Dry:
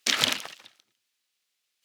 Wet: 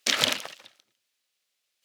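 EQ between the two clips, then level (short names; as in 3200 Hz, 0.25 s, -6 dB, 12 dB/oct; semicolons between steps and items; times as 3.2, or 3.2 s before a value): bell 560 Hz +6 dB 0.47 oct; 0.0 dB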